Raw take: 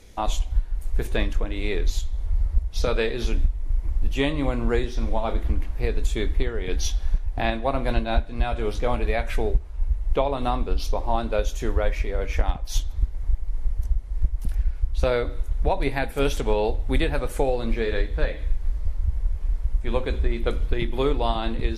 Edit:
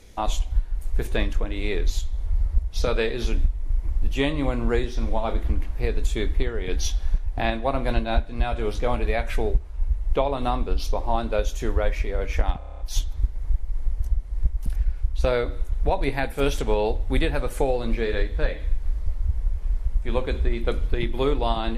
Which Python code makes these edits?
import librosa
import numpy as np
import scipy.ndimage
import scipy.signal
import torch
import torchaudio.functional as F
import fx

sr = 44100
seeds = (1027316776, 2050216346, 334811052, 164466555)

y = fx.edit(x, sr, fx.stutter(start_s=12.58, slice_s=0.03, count=8), tone=tone)